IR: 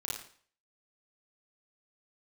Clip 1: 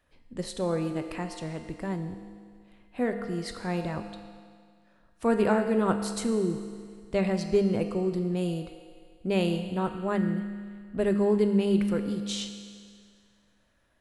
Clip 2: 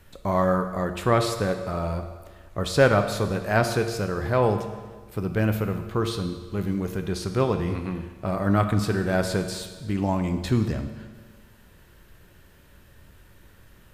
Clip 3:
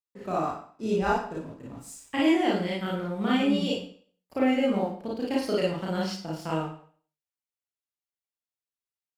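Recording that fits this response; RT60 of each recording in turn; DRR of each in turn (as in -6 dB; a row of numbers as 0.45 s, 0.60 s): 3; 2.0 s, 1.5 s, 0.50 s; 6.0 dB, 6.5 dB, -6.0 dB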